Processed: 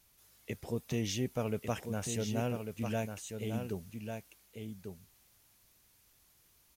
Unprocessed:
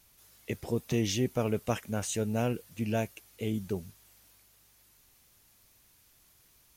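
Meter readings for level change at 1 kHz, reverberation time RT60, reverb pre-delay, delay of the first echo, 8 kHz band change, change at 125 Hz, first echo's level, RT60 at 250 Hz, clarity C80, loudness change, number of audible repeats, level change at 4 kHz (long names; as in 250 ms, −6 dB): −3.5 dB, no reverb audible, no reverb audible, 1,146 ms, −3.5 dB, −3.5 dB, −6.5 dB, no reverb audible, no reverb audible, −5.0 dB, 1, −3.5 dB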